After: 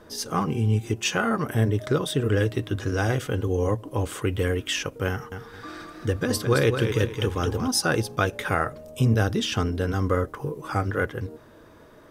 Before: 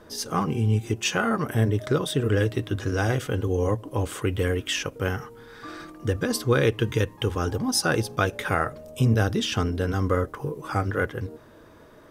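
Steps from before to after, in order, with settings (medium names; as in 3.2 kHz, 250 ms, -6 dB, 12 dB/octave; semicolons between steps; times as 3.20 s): 5.10–7.68 s: modulated delay 218 ms, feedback 33%, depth 69 cents, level -7 dB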